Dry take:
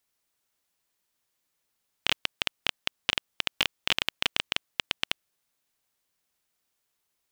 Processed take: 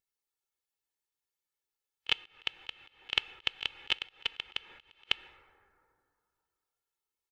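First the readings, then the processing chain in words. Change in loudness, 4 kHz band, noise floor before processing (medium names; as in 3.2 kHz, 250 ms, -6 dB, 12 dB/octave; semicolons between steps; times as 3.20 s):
-5.0 dB, -5.0 dB, -79 dBFS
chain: comb 2.3 ms, depth 42%; plate-style reverb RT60 3.5 s, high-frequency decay 0.3×, DRR 18 dB; slow attack 216 ms; spectral contrast expander 1.5:1; trim +7.5 dB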